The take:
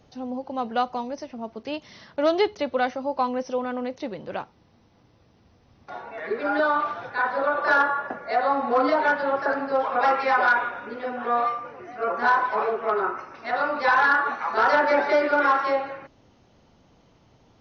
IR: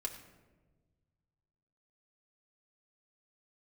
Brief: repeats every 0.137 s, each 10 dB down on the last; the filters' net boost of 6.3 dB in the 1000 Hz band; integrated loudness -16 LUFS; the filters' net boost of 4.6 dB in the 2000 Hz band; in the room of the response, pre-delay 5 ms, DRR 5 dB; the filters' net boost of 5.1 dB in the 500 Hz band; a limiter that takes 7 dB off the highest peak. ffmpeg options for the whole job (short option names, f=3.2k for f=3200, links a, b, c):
-filter_complex "[0:a]equalizer=f=500:t=o:g=4,equalizer=f=1k:t=o:g=6,equalizer=f=2k:t=o:g=3,alimiter=limit=-11dB:level=0:latency=1,aecho=1:1:137|274|411|548:0.316|0.101|0.0324|0.0104,asplit=2[a][b];[1:a]atrim=start_sample=2205,adelay=5[c];[b][c]afir=irnorm=-1:irlink=0,volume=-5dB[d];[a][d]amix=inputs=2:normalize=0,volume=3.5dB"